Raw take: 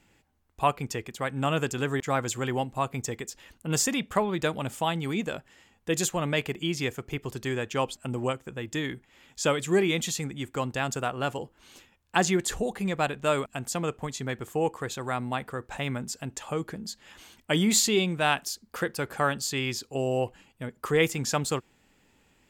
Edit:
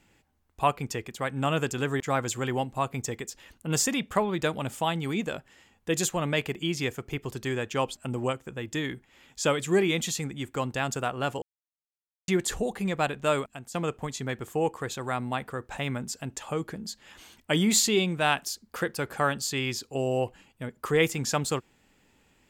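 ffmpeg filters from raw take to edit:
-filter_complex "[0:a]asplit=4[a][b][c][d];[a]atrim=end=11.42,asetpts=PTS-STARTPTS,afade=t=out:st=11.416:d=0.004:c=hsin[e];[b]atrim=start=11.42:end=12.28,asetpts=PTS-STARTPTS,volume=0[f];[c]atrim=start=12.28:end=13.74,asetpts=PTS-STARTPTS,afade=t=in:d=0.004:c=hsin,afade=t=out:st=1.09:d=0.37:c=qua:silence=0.298538[g];[d]atrim=start=13.74,asetpts=PTS-STARTPTS,afade=t=in:d=0.004:c=hsin:silence=0.298538[h];[e][f][g][h]concat=n=4:v=0:a=1"

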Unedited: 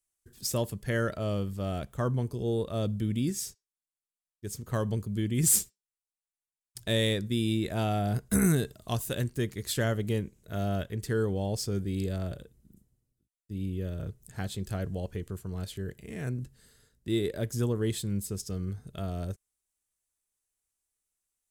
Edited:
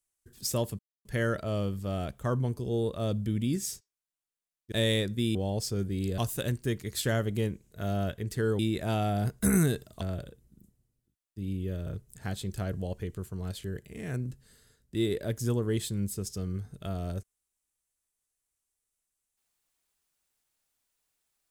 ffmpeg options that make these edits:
-filter_complex "[0:a]asplit=7[a][b][c][d][e][f][g];[a]atrim=end=0.79,asetpts=PTS-STARTPTS,afade=t=out:st=0.786:d=0.004:c=hsin,apad=pad_dur=0.26[h];[b]atrim=start=0.79:end=4.462,asetpts=PTS-STARTPTS,afade=t=in:d=0.004:c=hsin[i];[c]atrim=start=6.848:end=7.482[j];[d]atrim=start=11.308:end=12.142[k];[e]atrim=start=8.898:end=11.312[l];[f]atrim=start=7.478:end=8.902[m];[g]atrim=start=12.138[n];[h][i]concat=n=2:v=0:a=1[o];[o][j]acrossfade=d=0.004:c1=hsin:c2=hsin[p];[p][k]acrossfade=d=0.004:c1=hsin:c2=hsin[q];[q][l]acrossfade=d=0.004:c1=hsin:c2=hsin[r];[r][m]acrossfade=d=0.004:c1=hsin:c2=hsin[s];[s][n]acrossfade=d=0.004:c1=hsin:c2=hsin"

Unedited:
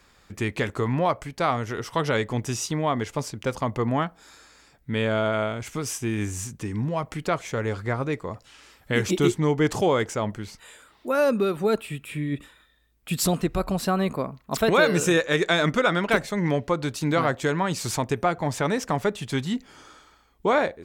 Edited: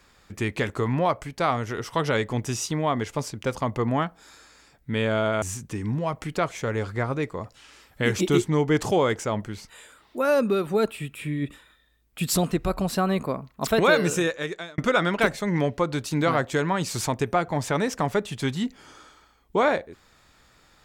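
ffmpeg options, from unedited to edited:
-filter_complex "[0:a]asplit=3[a][b][c];[a]atrim=end=5.422[d];[b]atrim=start=6.318:end=15.68,asetpts=PTS-STARTPTS,afade=t=out:st=8.532:d=0.83[e];[c]atrim=start=15.68,asetpts=PTS-STARTPTS,afade=t=in:d=0.004:c=hsin[f];[e][f]concat=n=2:v=0:a=1[g];[d][g]acrossfade=d=0.004:c1=hsin:c2=hsin"

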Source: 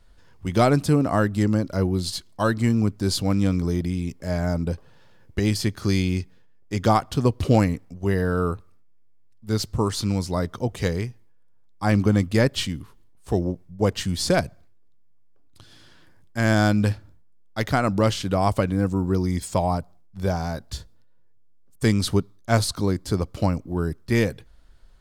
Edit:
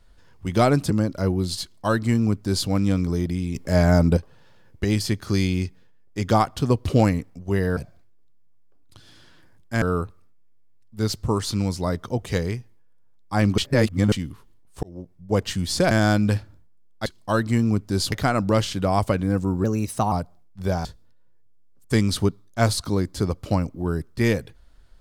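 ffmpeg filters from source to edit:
-filter_complex "[0:a]asplit=15[a][b][c][d][e][f][g][h][i][j][k][l][m][n][o];[a]atrim=end=0.902[p];[b]atrim=start=1.448:end=4.102[q];[c]atrim=start=4.098:end=4.722,asetpts=PTS-STARTPTS,volume=7.5dB[r];[d]atrim=start=4.718:end=8.322[s];[e]atrim=start=14.408:end=16.462[t];[f]atrim=start=8.318:end=12.082[u];[g]atrim=start=12.078:end=12.622,asetpts=PTS-STARTPTS,areverse[v];[h]atrim=start=12.618:end=13.33,asetpts=PTS-STARTPTS,afade=t=out:st=0.708:d=0.004:c=hsin[w];[i]atrim=start=13.33:end=14.412,asetpts=PTS-STARTPTS,afade=t=in:d=0.55[x];[j]atrim=start=16.458:end=17.612[y];[k]atrim=start=2.168:end=3.232[z];[l]atrim=start=17.608:end=19.134[aa];[m]atrim=start=19.13:end=19.7,asetpts=PTS-STARTPTS,asetrate=52479,aresample=44100[ab];[n]atrim=start=19.696:end=20.432[ac];[o]atrim=start=20.758[ad];[p][q]acrossfade=d=0.004:c1=hsin:c2=hsin[ae];[ae][r]acrossfade=d=0.004:c1=hsin:c2=hsin[af];[af][s]acrossfade=d=0.004:c1=hsin:c2=hsin[ag];[ag][t]acrossfade=d=0.004:c1=hsin:c2=hsin[ah];[ah][u]acrossfade=d=0.004:c1=hsin:c2=hsin[ai];[ai][v]acrossfade=d=0.004:c1=hsin:c2=hsin[aj];[w][x]concat=n=2:v=0:a=1[ak];[aj][ak]acrossfade=d=0.004:c1=hsin:c2=hsin[al];[al][y]acrossfade=d=0.004:c1=hsin:c2=hsin[am];[am][z]acrossfade=d=0.004:c1=hsin:c2=hsin[an];[an][aa]acrossfade=d=0.004:c1=hsin:c2=hsin[ao];[ao][ab]acrossfade=d=0.004:c1=hsin:c2=hsin[ap];[ap][ac]acrossfade=d=0.004:c1=hsin:c2=hsin[aq];[aq][ad]acrossfade=d=0.004:c1=hsin:c2=hsin"

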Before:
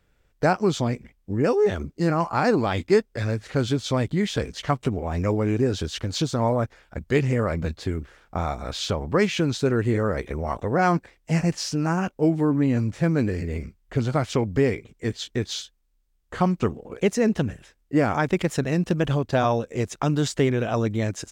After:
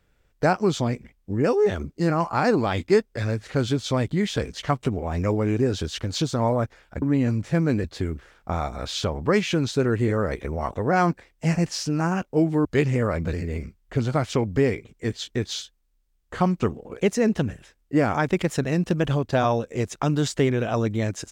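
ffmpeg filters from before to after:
-filter_complex "[0:a]asplit=5[a][b][c][d][e];[a]atrim=end=7.022[f];[b]atrim=start=12.508:end=13.332[g];[c]atrim=start=7.698:end=12.512[h];[d]atrim=start=7.018:end=7.702[i];[e]atrim=start=13.328[j];[f][g]acrossfade=d=0.004:c1=hsin:c2=hsin[k];[k][h]acrossfade=d=0.004:c1=hsin:c2=hsin[l];[l][i]acrossfade=d=0.004:c1=hsin:c2=hsin[m];[m][j]acrossfade=d=0.004:c1=hsin:c2=hsin"

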